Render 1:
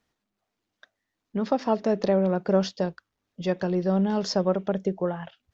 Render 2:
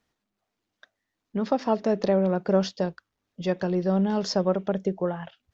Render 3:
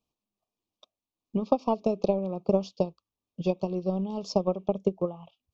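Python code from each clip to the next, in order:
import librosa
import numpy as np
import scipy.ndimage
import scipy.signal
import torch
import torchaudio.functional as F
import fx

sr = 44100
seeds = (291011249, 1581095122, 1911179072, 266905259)

y1 = x
y2 = fx.transient(y1, sr, attack_db=11, sustain_db=-2)
y2 = fx.wow_flutter(y2, sr, seeds[0], rate_hz=2.1, depth_cents=26.0)
y2 = scipy.signal.sosfilt(scipy.signal.ellip(3, 1.0, 40, [1200.0, 2400.0], 'bandstop', fs=sr, output='sos'), y2)
y2 = y2 * 10.0 ** (-8.0 / 20.0)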